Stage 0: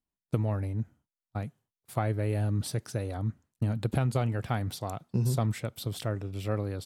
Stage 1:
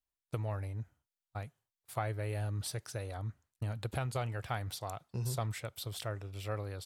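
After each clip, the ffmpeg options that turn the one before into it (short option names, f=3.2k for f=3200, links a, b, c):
-af "equalizer=f=220:t=o:w=1.7:g=-13.5,volume=-2dB"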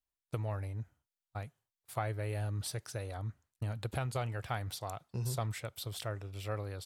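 -af anull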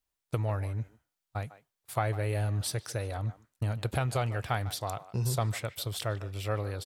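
-filter_complex "[0:a]asplit=2[a][b];[b]adelay=150,highpass=300,lowpass=3.4k,asoftclip=type=hard:threshold=-28dB,volume=-15dB[c];[a][c]amix=inputs=2:normalize=0,volume=6dB"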